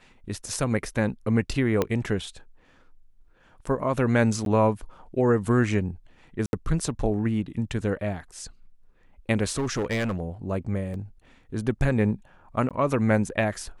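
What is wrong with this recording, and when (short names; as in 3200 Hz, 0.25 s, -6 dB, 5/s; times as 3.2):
1.82 pop -10 dBFS
4.45–4.46 gap 12 ms
6.46–6.53 gap 71 ms
9.49–10.2 clipped -22.5 dBFS
10.94 gap 2.1 ms
12.69–12.71 gap 17 ms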